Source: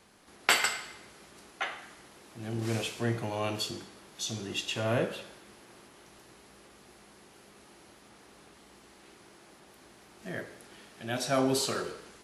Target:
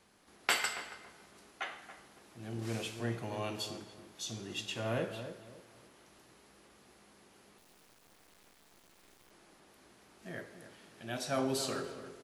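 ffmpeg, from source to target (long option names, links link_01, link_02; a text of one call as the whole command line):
ffmpeg -i in.wav -filter_complex "[0:a]asettb=1/sr,asplit=3[link_01][link_02][link_03];[link_01]atrim=end=7.584[link_04];[link_02]atrim=start=7.58:end=9.31,asetpts=PTS-STARTPTS,afade=type=in:duration=0.004:curve=qsin,afade=type=out:start_time=1.726:duration=0.004:curve=qsin,acrusher=bits=6:dc=4:mix=0:aa=0.000001[link_05];[link_03]atrim=start=9.306[link_06];[link_04][link_05]acrossfade=duration=0.004:curve1=hsin:curve2=qsin[link_07];[link_07][link_06]acrossfade=duration=0.004:curve1=qsin:curve2=hsin,asplit=2[link_08][link_09];[link_09]adelay=279,lowpass=frequency=1200:poles=1,volume=-10dB,asplit=2[link_10][link_11];[link_11]adelay=279,lowpass=frequency=1200:poles=1,volume=0.31,asplit=2[link_12][link_13];[link_13]adelay=279,lowpass=frequency=1200:poles=1,volume=0.31[link_14];[link_08][link_10][link_12][link_14]amix=inputs=4:normalize=0,volume=-6dB" out.wav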